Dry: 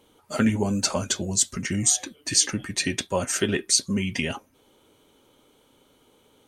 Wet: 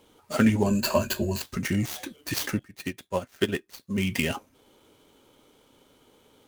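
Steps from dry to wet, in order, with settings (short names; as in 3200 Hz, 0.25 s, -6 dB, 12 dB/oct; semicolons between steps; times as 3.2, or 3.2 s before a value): switching dead time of 0.071 ms; 0.66–1.42 ripple EQ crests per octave 1.4, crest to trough 12 dB; 2.59–3.98 upward expander 2.5:1, over -33 dBFS; gain +1 dB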